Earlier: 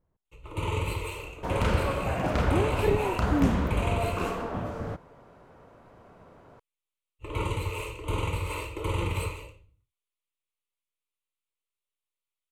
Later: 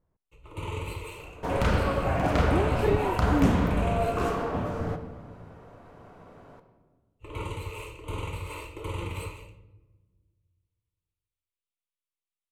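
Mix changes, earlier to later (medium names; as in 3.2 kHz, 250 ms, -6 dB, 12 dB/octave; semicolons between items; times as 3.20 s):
first sound -5.5 dB; reverb: on, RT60 1.5 s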